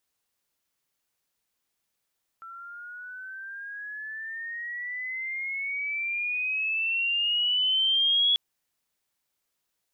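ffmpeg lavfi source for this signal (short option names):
-f lavfi -i "aevalsrc='pow(10,(-19+21*(t/5.94-1))/20)*sin(2*PI*1340*5.94/(16*log(2)/12)*(exp(16*log(2)/12*t/5.94)-1))':d=5.94:s=44100"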